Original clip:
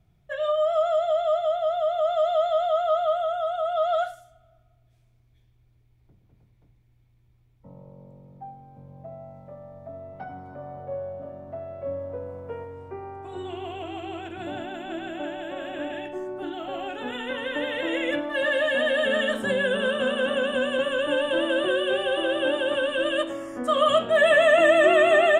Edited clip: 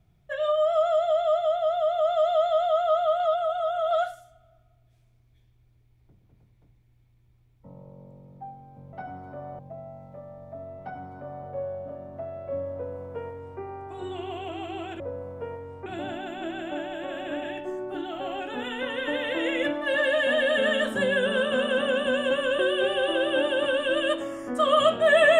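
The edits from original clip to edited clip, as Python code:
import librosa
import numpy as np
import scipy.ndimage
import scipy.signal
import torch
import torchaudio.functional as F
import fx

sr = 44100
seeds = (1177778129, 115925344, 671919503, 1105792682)

y = fx.edit(x, sr, fx.reverse_span(start_s=3.2, length_s=0.71),
    fx.duplicate(start_s=10.15, length_s=0.66, to_s=8.93),
    fx.duplicate(start_s=12.08, length_s=0.86, to_s=14.34),
    fx.cut(start_s=21.07, length_s=0.61), tone=tone)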